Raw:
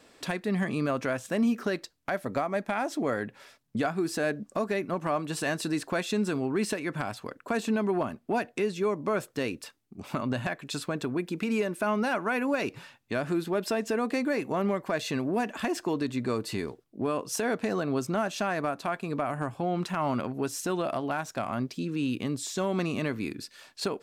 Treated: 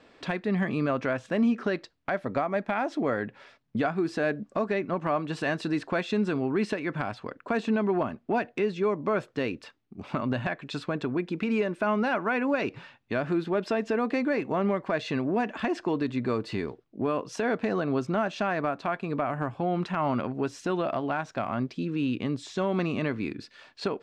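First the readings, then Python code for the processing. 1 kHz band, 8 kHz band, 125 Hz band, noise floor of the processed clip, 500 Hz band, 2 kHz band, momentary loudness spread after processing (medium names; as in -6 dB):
+1.5 dB, under -10 dB, +1.5 dB, -61 dBFS, +1.5 dB, +1.0 dB, 7 LU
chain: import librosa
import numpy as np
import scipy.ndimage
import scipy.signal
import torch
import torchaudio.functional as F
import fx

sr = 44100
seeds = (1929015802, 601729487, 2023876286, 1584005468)

y = scipy.signal.sosfilt(scipy.signal.butter(2, 3500.0, 'lowpass', fs=sr, output='sos'), x)
y = F.gain(torch.from_numpy(y), 1.5).numpy()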